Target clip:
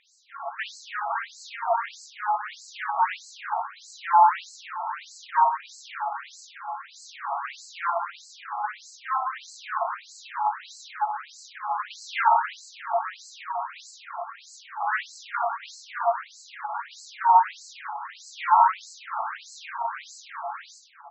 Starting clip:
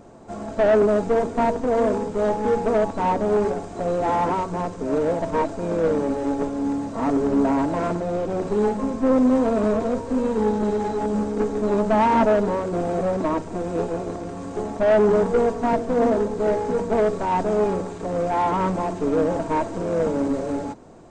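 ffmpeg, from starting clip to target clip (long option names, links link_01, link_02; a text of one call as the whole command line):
ffmpeg -i in.wav -filter_complex "[0:a]asettb=1/sr,asplit=3[link_01][link_02][link_03];[link_01]atrim=end=16.054[link_04];[link_02]atrim=start=16.05:end=16.73,asetpts=PTS-STARTPTS,afade=type=in:duration=0.004:curve=qsin,afade=type=out:start_time=0.676:duration=0.004:curve=qsin,acompressor=threshold=-21dB:ratio=6[link_05];[link_03]atrim=start=16.726[link_06];[link_04][link_05]acrossfade=duration=0.004:curve1=hsin:curve2=qsin[link_07];[link_07][link_06]acrossfade=duration=0.004:curve1=qsin:curve2=hsin,aecho=1:1:60|150|285|487.5|791.2:0.631|0.398|0.251|0.158|0.1,afftfilt=real='re*between(b*sr/1024,950*pow(5800/950,0.5+0.5*sin(2*PI*1.6*pts/sr))/1.41,950*pow(5800/950,0.5+0.5*sin(2*PI*1.6*pts/sr))*1.41)':imag='im*between(b*sr/1024,950*pow(5800/950,0.5+0.5*sin(2*PI*1.6*pts/sr))/1.41,950*pow(5800/950,0.5+0.5*sin(2*PI*1.6*pts/sr))*1.41)':win_size=1024:overlap=0.75,volume=5.5dB" out.wav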